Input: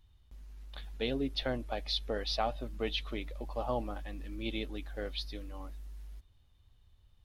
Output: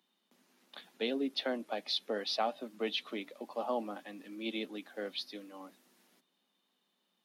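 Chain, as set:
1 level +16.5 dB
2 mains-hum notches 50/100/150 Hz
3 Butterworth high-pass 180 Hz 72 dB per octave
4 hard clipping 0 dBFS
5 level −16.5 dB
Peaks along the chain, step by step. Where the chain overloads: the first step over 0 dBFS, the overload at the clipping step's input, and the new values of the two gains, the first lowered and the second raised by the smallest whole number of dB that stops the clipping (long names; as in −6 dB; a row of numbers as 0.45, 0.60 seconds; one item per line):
−0.5, −1.0, −3.0, −3.0, −19.5 dBFS
no step passes full scale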